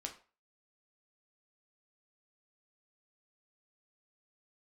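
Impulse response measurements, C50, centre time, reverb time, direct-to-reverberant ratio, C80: 11.0 dB, 13 ms, 0.35 s, 2.5 dB, 16.5 dB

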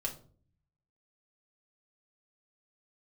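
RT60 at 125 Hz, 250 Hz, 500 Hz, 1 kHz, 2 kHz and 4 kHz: 1.1, 0.80, 0.55, 0.40, 0.30, 0.30 seconds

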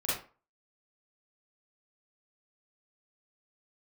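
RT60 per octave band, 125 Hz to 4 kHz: 0.30, 0.35, 0.35, 0.40, 0.30, 0.25 seconds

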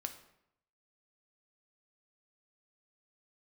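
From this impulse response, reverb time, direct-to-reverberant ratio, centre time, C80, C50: 0.75 s, 6.0 dB, 11 ms, 13.5 dB, 11.0 dB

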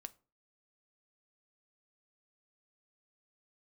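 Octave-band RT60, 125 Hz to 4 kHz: 0.40, 0.45, 0.40, 0.35, 0.25, 0.25 seconds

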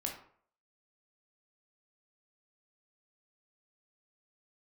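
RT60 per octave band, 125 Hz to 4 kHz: 0.50, 0.50, 0.55, 0.55, 0.45, 0.35 seconds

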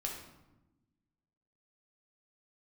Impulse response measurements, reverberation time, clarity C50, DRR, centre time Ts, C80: 1.0 s, 4.0 dB, −0.5 dB, 37 ms, 7.0 dB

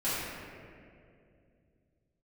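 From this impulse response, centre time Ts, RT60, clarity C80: 146 ms, 2.4 s, −1.0 dB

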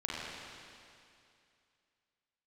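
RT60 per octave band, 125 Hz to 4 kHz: 2.5, 2.5, 2.5, 2.5, 2.5, 2.5 seconds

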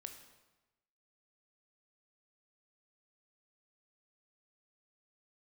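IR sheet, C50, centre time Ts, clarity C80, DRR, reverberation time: 8.0 dB, 20 ms, 10.0 dB, 5.5 dB, 1.1 s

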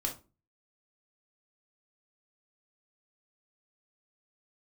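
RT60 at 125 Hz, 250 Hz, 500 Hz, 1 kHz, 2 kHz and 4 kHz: 0.50, 0.45, 0.35, 0.30, 0.25, 0.20 seconds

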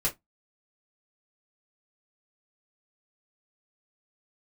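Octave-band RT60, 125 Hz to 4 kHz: 0.20, 0.20, 0.15, 0.15, 0.15, 0.10 seconds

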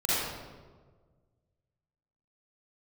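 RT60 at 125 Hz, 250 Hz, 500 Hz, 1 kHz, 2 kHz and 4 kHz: 2.2, 1.7, 1.7, 1.3, 1.0, 0.85 seconds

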